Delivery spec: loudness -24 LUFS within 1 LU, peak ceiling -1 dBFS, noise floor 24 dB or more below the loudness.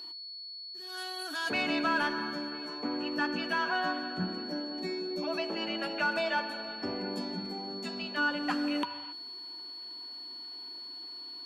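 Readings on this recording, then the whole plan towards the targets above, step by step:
steady tone 4400 Hz; tone level -41 dBFS; loudness -33.5 LUFS; peak -20.0 dBFS; loudness target -24.0 LUFS
-> notch 4400 Hz, Q 30; gain +9.5 dB

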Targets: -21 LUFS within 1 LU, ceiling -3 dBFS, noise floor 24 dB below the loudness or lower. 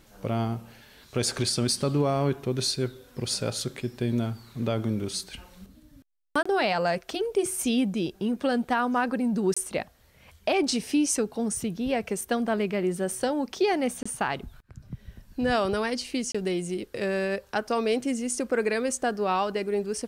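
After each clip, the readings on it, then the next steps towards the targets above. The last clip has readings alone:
dropouts 4; longest dropout 25 ms; loudness -27.5 LUFS; peak -14.5 dBFS; loudness target -21.0 LUFS
-> interpolate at 6.43/9.54/14.03/16.32, 25 ms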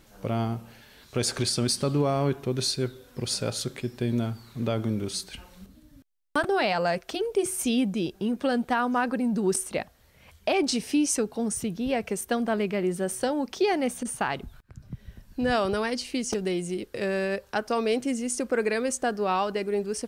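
dropouts 0; loudness -27.5 LUFS; peak -14.5 dBFS; loudness target -21.0 LUFS
-> gain +6.5 dB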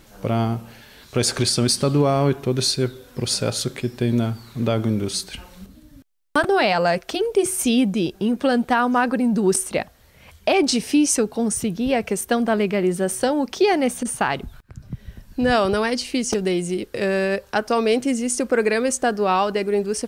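loudness -21.0 LUFS; peak -8.0 dBFS; noise floor -51 dBFS

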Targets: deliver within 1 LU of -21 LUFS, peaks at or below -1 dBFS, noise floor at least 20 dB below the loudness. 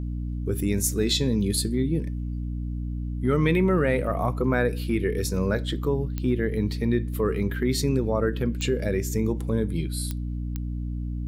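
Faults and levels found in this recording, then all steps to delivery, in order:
clicks 4; hum 60 Hz; harmonics up to 300 Hz; hum level -27 dBFS; loudness -26.0 LUFS; peak -10.5 dBFS; loudness target -21.0 LUFS
-> de-click; notches 60/120/180/240/300 Hz; gain +5 dB

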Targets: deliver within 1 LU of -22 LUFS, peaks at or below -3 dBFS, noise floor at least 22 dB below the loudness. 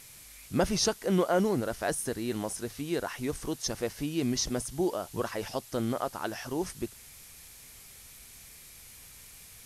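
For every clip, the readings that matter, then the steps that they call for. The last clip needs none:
noise floor -51 dBFS; noise floor target -54 dBFS; loudness -31.5 LUFS; peak -13.0 dBFS; loudness target -22.0 LUFS
-> denoiser 6 dB, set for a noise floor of -51 dBFS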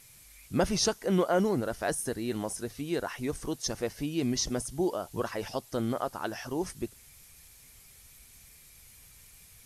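noise floor -55 dBFS; loudness -31.5 LUFS; peak -13.0 dBFS; loudness target -22.0 LUFS
-> gain +9.5 dB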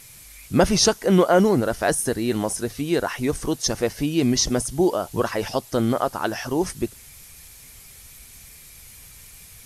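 loudness -22.0 LUFS; peak -3.5 dBFS; noise floor -46 dBFS

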